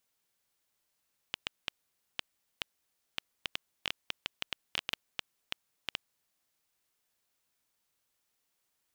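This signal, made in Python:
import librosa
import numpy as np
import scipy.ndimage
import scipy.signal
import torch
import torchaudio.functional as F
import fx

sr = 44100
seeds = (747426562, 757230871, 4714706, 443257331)

y = fx.geiger_clicks(sr, seeds[0], length_s=4.69, per_s=5.4, level_db=-14.0)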